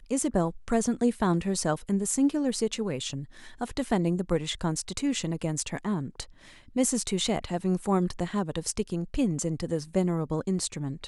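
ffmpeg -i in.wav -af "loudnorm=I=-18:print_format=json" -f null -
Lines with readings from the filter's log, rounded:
"input_i" : "-28.9",
"input_tp" : "-11.1",
"input_lra" : "2.7",
"input_thresh" : "-39.1",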